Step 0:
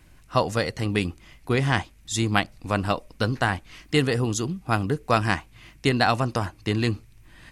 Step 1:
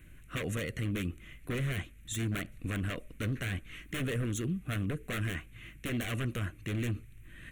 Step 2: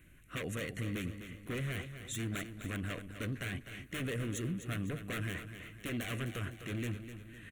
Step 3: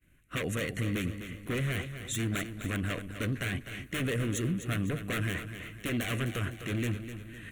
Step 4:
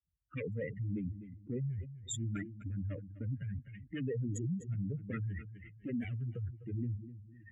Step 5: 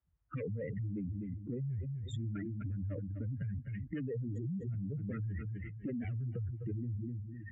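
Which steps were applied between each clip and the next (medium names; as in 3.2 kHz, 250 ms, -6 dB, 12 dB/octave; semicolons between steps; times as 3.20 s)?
wavefolder -20.5 dBFS; static phaser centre 2.1 kHz, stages 4; peak limiter -26.5 dBFS, peak gain reduction 9.5 dB
bass shelf 76 Hz -8 dB; feedback delay 253 ms, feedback 46%, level -10 dB; trim -3 dB
expander -51 dBFS; reverse; upward compressor, threshold -52 dBFS; reverse; trim +6 dB
spectral contrast enhancement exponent 3.2; high-pass 47 Hz 24 dB/octave; three bands expanded up and down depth 40%; trim -4.5 dB
low-pass 1.5 kHz 12 dB/octave; peak limiter -38.5 dBFS, peak gain reduction 10 dB; compression, threshold -45 dBFS, peak gain reduction 5 dB; trim +10 dB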